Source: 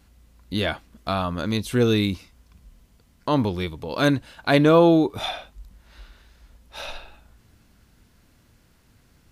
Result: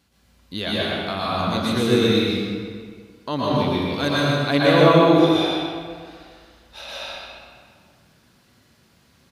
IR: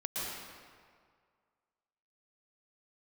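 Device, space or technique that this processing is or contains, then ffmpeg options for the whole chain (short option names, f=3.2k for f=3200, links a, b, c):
PA in a hall: -filter_complex "[0:a]highpass=100,equalizer=f=4k:t=o:w=1.3:g=5,aecho=1:1:125:0.501[a];[1:a]atrim=start_sample=2205[b];[a][b]afir=irnorm=-1:irlink=0,volume=-2.5dB"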